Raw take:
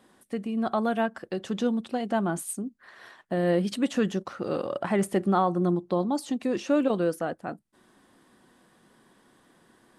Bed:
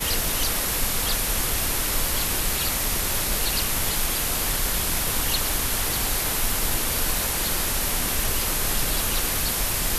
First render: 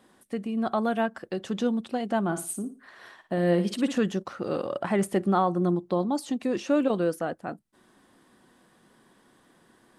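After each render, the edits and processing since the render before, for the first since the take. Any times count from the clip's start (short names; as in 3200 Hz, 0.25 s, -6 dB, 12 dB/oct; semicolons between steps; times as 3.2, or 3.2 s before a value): 2.24–3.98 flutter echo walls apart 9.8 m, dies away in 0.32 s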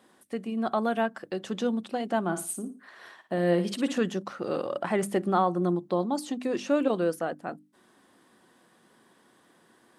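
HPF 160 Hz 6 dB/oct; notches 50/100/150/200/250/300 Hz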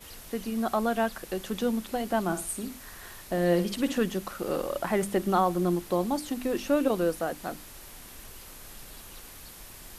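add bed -22 dB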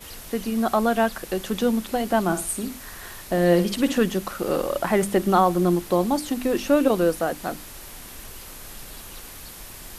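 gain +6 dB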